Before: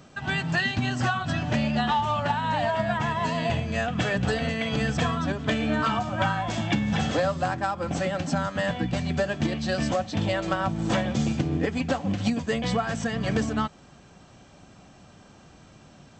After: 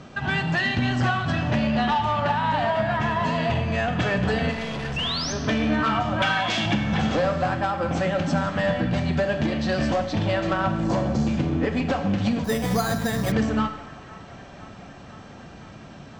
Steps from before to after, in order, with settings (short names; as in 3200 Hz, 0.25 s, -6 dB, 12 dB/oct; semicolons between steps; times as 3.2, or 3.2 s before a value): 6.22–6.66 weighting filter D; 10.84–11.27 spectral gain 1200–4000 Hz -11 dB; in parallel at -0.5 dB: compressor, threshold -33 dBFS, peak gain reduction 14 dB; 4.51–5.33 on the sum: hard clip -31 dBFS, distortion -15 dB; 4.96–5.33 painted sound rise 2600–6500 Hz -27 dBFS; soft clip -18 dBFS, distortion -17 dB; air absorption 100 m; on a send: band-limited delay 0.509 s, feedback 77%, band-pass 1300 Hz, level -19.5 dB; on the sum: Schroeder reverb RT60 1.1 s, combs from 29 ms, DRR 7.5 dB; 12.44–13.32 careless resampling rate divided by 8×, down filtered, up hold; gain +2 dB